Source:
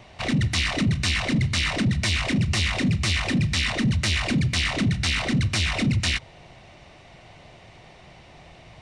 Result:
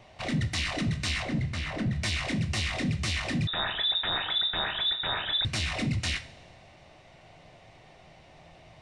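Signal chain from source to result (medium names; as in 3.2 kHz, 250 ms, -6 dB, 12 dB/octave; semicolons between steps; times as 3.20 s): 1.23–1.96 s: treble shelf 2.6 kHz -11.5 dB; two-slope reverb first 0.33 s, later 1.7 s, from -18 dB, DRR 6.5 dB; 3.47–5.45 s: frequency inversion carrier 3.7 kHz; peaking EQ 620 Hz +3 dB 0.56 oct; trim -7 dB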